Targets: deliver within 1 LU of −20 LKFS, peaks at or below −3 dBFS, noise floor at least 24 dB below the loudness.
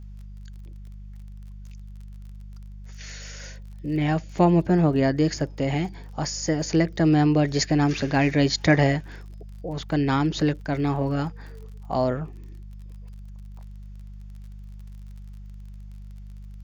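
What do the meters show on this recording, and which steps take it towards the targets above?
crackle rate 36 per second; mains hum 50 Hz; hum harmonics up to 200 Hz; level of the hum −38 dBFS; integrated loudness −23.0 LKFS; sample peak −3.5 dBFS; target loudness −20.0 LKFS
→ click removal
hum removal 50 Hz, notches 4
level +3 dB
brickwall limiter −3 dBFS

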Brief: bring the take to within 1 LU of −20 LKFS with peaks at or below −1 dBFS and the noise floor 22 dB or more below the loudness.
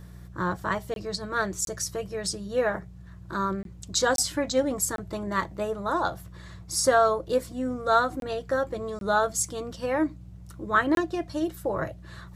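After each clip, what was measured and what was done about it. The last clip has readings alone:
number of dropouts 8; longest dropout 22 ms; mains hum 60 Hz; hum harmonics up to 180 Hz; level of the hum −43 dBFS; integrated loudness −27.5 LKFS; sample peak −9.0 dBFS; target loudness −20.0 LKFS
→ repair the gap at 0:00.94/0:01.65/0:03.63/0:04.16/0:04.96/0:08.20/0:08.99/0:10.95, 22 ms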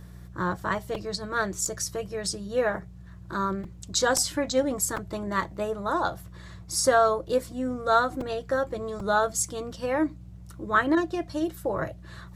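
number of dropouts 0; mains hum 60 Hz; hum harmonics up to 180 Hz; level of the hum −43 dBFS
→ hum removal 60 Hz, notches 3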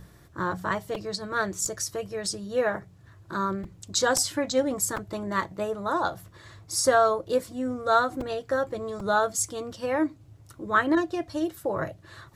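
mains hum none found; integrated loudness −27.5 LKFS; sample peak −9.0 dBFS; target loudness −20.0 LKFS
→ level +7.5 dB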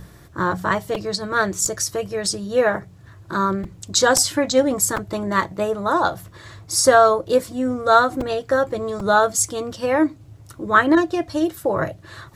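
integrated loudness −20.0 LKFS; sample peak −1.5 dBFS; background noise floor −46 dBFS

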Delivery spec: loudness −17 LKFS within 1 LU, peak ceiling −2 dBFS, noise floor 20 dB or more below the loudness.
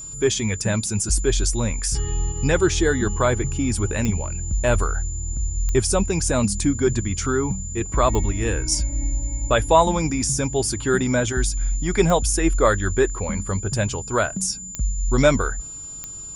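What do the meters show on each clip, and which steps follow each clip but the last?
number of clicks 6; interfering tone 7,100 Hz; level of the tone −33 dBFS; integrated loudness −22.0 LKFS; sample peak −3.5 dBFS; target loudness −17.0 LKFS
→ click removal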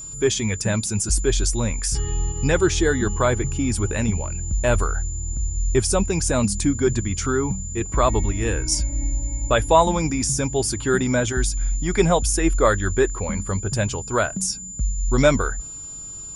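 number of clicks 0; interfering tone 7,100 Hz; level of the tone −33 dBFS
→ notch filter 7,100 Hz, Q 30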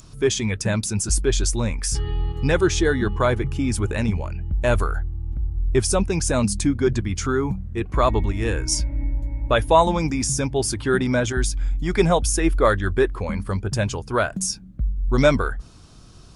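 interfering tone none found; integrated loudness −22.5 LKFS; sample peak −3.5 dBFS; target loudness −17.0 LKFS
→ level +5.5 dB
brickwall limiter −2 dBFS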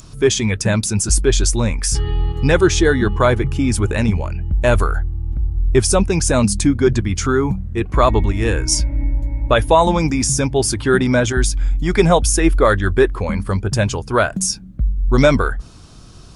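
integrated loudness −17.0 LKFS; sample peak −2.0 dBFS; background noise floor −39 dBFS

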